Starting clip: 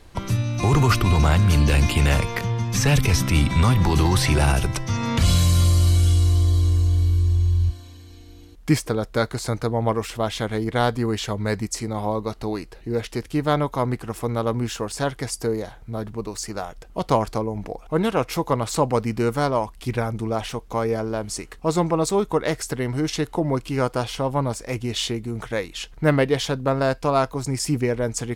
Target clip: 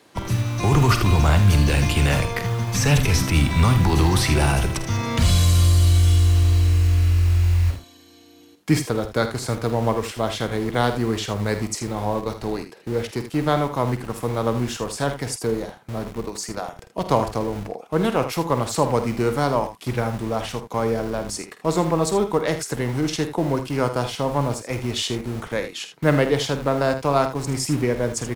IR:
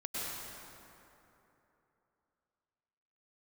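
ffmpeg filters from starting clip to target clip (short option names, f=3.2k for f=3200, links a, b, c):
-filter_complex "[0:a]acrossover=split=150|780|4200[a][b][c][d];[a]acrusher=bits=5:mix=0:aa=0.000001[e];[e][b][c][d]amix=inputs=4:normalize=0,aecho=1:1:49|79:0.266|0.266"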